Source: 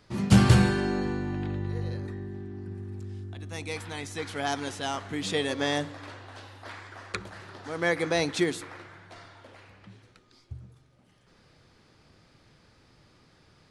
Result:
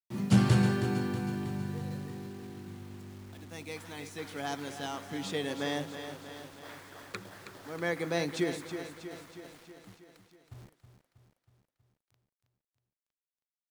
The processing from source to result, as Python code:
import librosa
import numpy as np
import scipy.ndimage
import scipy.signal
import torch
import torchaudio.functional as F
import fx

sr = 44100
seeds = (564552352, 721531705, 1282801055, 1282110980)

p1 = scipy.signal.sosfilt(scipy.signal.butter(4, 110.0, 'highpass', fs=sr, output='sos'), x)
p2 = fx.quant_dither(p1, sr, seeds[0], bits=8, dither='none')
p3 = fx.low_shelf(p2, sr, hz=360.0, db=4.5)
p4 = p3 + fx.echo_feedback(p3, sr, ms=320, feedback_pct=59, wet_db=-9.5, dry=0)
y = p4 * librosa.db_to_amplitude(-7.5)